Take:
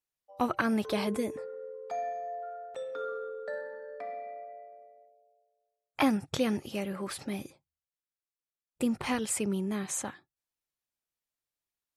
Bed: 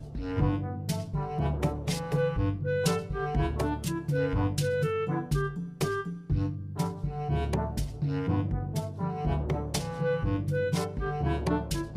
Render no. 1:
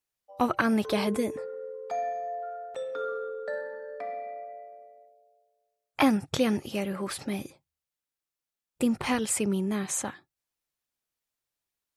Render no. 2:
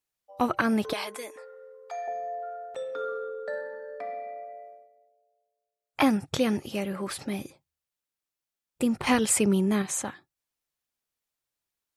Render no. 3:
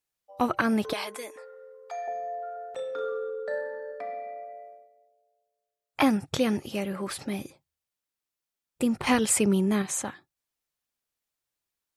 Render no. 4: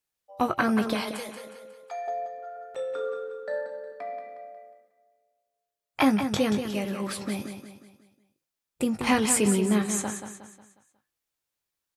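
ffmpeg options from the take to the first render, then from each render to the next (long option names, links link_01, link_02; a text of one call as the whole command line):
ffmpeg -i in.wav -af "volume=3.5dB" out.wav
ffmpeg -i in.wav -filter_complex "[0:a]asettb=1/sr,asplit=3[link_01][link_02][link_03];[link_01]atrim=end=0.934[link_04];[link_02]atrim=start=0.93:end=2.08,asetpts=PTS-STARTPTS,afade=type=in:duration=0.004:curve=qsin,afade=type=out:start_time=1.146:duration=0.004:curve=qsin,highpass=810[link_05];[link_03]atrim=start=2.076[link_06];[link_04][link_05]acrossfade=duration=0.004:curve1=hsin:curve2=qsin[link_07];[link_07][link_06]acrossfade=duration=0.004:curve1=qsin:curve2=hsin,asplit=5[link_08][link_09][link_10][link_11][link_12];[link_08]atrim=end=4.89,asetpts=PTS-STARTPTS,afade=type=out:start_time=4.69:duration=0.2:silence=0.398107[link_13];[link_09]atrim=start=4.89:end=5.8,asetpts=PTS-STARTPTS,volume=-8dB[link_14];[link_10]atrim=start=5.8:end=9.072,asetpts=PTS-STARTPTS,afade=type=in:duration=0.2:silence=0.398107[link_15];[link_11]atrim=start=9.068:end=9.822,asetpts=PTS-STARTPTS,volume=4.5dB[link_16];[link_12]atrim=start=9.818[link_17];[link_13][link_14][link_15]concat=n=3:v=0:a=1[link_18];[link_18][link_16]acrossfade=duration=0.004:curve1=hsin:curve2=hsin[link_19];[link_19][link_17]acrossfade=duration=0.004:curve1=hsin:curve2=hsin" out.wav
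ffmpeg -i in.wav -filter_complex "[0:a]asettb=1/sr,asplit=3[link_01][link_02][link_03];[link_01]atrim=end=2.534[link_04];[link_02]atrim=start=2.53:end=3.92,asetpts=PTS-STARTPTS,afade=type=in:duration=0.004:curve=qsin,afade=type=out:start_time=1.386:duration=0.004:curve=qsin,asplit=2[link_05][link_06];[link_06]adelay=34,volume=-8.5dB[link_07];[link_05][link_07]amix=inputs=2:normalize=0,atrim=end_sample=61299[link_08];[link_03]atrim=start=3.916[link_09];[link_04][link_08]acrossfade=duration=0.004:curve1=hsin:curve2=qsin[link_10];[link_10][link_09]acrossfade=duration=0.004:curve1=qsin:curve2=hsin" out.wav
ffmpeg -i in.wav -filter_complex "[0:a]asplit=2[link_01][link_02];[link_02]adelay=19,volume=-10dB[link_03];[link_01][link_03]amix=inputs=2:normalize=0,aecho=1:1:181|362|543|724|905:0.376|0.162|0.0695|0.0299|0.0128" out.wav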